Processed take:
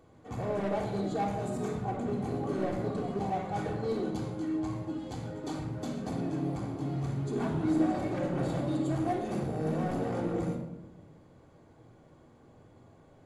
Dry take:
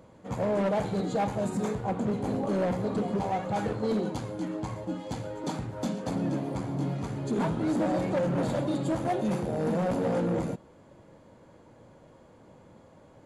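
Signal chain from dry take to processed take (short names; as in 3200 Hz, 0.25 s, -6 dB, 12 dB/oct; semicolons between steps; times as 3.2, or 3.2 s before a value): shoebox room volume 3600 m³, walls furnished, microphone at 3.5 m; gain -7 dB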